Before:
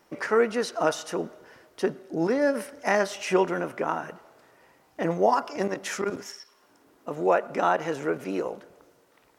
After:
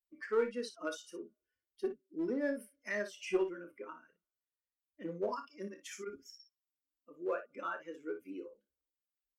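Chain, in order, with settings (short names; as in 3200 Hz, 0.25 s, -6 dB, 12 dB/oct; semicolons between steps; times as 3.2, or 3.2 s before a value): per-bin expansion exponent 2; high shelf 2300 Hz -8.5 dB; fixed phaser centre 320 Hz, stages 4; in parallel at -5 dB: one-sided clip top -28.5 dBFS; on the sum: low shelf 220 Hz -10 dB; on a send: early reflections 29 ms -10 dB, 58 ms -10.5 dB; on the sum: gain -6 dB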